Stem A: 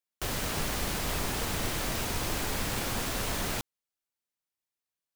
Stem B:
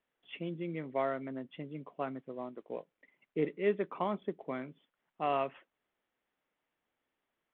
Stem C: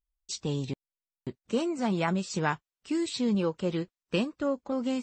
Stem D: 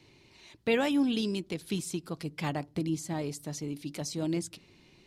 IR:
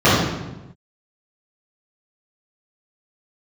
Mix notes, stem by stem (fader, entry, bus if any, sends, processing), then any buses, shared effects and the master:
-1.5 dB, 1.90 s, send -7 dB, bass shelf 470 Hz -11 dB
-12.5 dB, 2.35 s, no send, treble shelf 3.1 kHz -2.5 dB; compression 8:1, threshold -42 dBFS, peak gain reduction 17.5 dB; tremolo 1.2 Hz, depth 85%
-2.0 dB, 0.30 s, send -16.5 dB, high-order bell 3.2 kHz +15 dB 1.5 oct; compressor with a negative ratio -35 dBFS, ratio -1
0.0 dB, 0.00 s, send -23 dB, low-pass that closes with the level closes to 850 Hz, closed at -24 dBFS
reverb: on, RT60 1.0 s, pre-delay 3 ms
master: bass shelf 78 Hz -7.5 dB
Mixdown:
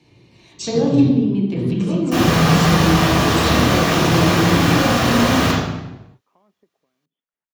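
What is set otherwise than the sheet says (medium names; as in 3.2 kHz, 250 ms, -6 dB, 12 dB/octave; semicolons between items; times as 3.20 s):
stem C: missing high-order bell 3.2 kHz +15 dB 1.5 oct; master: missing bass shelf 78 Hz -7.5 dB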